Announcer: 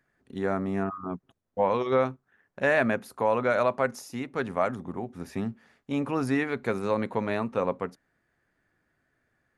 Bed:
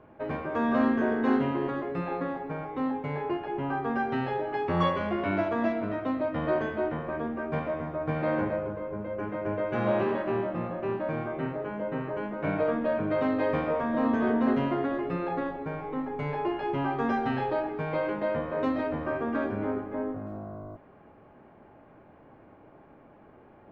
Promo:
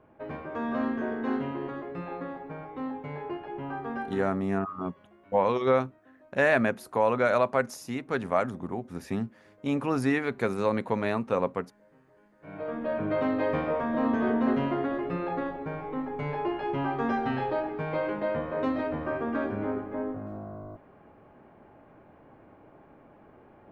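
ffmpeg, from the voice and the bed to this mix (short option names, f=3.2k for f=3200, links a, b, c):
-filter_complex "[0:a]adelay=3750,volume=0.5dB[a];[1:a]volume=23dB,afade=t=out:st=3.98:d=0.42:silence=0.0668344,afade=t=in:st=12.4:d=0.67:silence=0.0398107[b];[a][b]amix=inputs=2:normalize=0"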